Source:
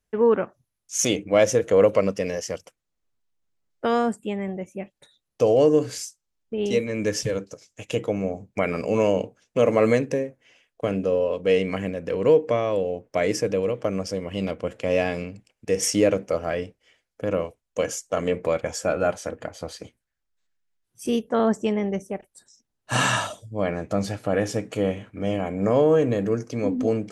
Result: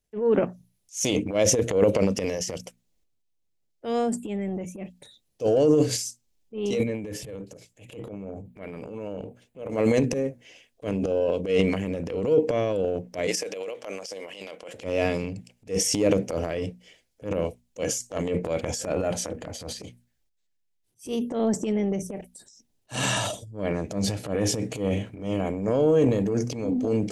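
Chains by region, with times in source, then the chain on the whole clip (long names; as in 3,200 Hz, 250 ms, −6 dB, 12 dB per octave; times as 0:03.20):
0:06.83–0:09.70: parametric band 5,800 Hz −14 dB 0.87 octaves + downward compressor 2 to 1, threshold −39 dBFS
0:13.27–0:14.74: high-pass filter 730 Hz + downward expander −48 dBFS
whole clip: parametric band 1,300 Hz −10.5 dB 1.2 octaves; mains-hum notches 60/120/180/240 Hz; transient designer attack −11 dB, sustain +9 dB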